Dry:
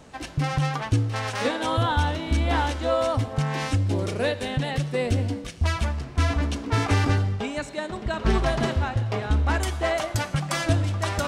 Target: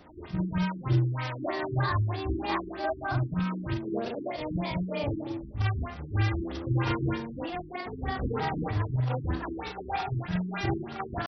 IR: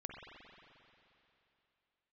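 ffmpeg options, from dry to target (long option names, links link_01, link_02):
-af "afftfilt=real='re':imag='-im':win_size=4096:overlap=0.75,asetrate=52444,aresample=44100,atempo=0.840896,afftfilt=real='re*lt(b*sr/1024,380*pow(6100/380,0.5+0.5*sin(2*PI*3.2*pts/sr)))':imag='im*lt(b*sr/1024,380*pow(6100/380,0.5+0.5*sin(2*PI*3.2*pts/sr)))':win_size=1024:overlap=0.75"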